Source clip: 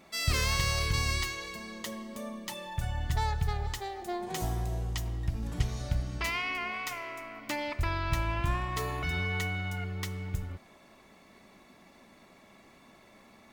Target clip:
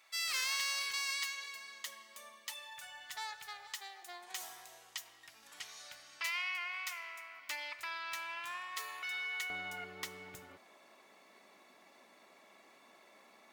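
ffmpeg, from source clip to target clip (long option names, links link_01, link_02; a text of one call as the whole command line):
ffmpeg -i in.wav -af "asetnsamples=nb_out_samples=441:pad=0,asendcmd='9.5 highpass f 410',highpass=1400,volume=-3dB" out.wav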